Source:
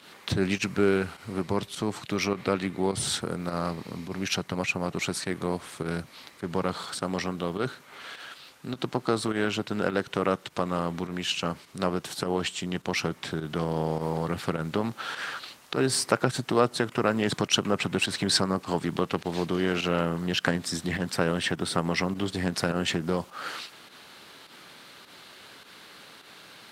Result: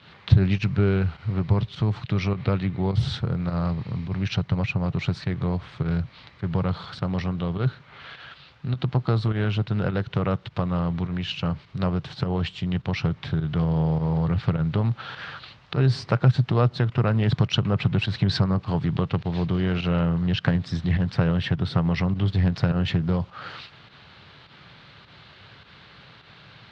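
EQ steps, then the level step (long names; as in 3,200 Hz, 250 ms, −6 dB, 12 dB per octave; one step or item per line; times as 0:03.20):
low shelf with overshoot 180 Hz +13.5 dB, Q 1.5
dynamic equaliser 1,800 Hz, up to −3 dB, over −37 dBFS, Q 0.76
low-pass filter 4,200 Hz 24 dB per octave
0.0 dB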